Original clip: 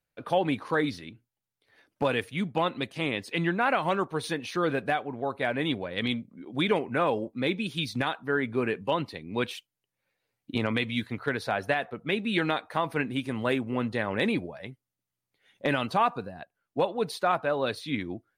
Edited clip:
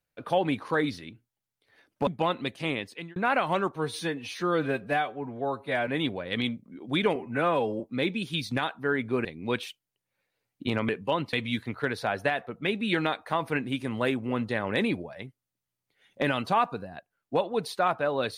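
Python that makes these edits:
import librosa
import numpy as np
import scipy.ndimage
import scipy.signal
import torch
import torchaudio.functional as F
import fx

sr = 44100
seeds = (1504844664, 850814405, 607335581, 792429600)

y = fx.edit(x, sr, fx.cut(start_s=2.07, length_s=0.36),
    fx.fade_out_span(start_s=3.05, length_s=0.47),
    fx.stretch_span(start_s=4.12, length_s=1.41, factor=1.5),
    fx.stretch_span(start_s=6.81, length_s=0.43, factor=1.5),
    fx.move(start_s=8.69, length_s=0.44, to_s=10.77), tone=tone)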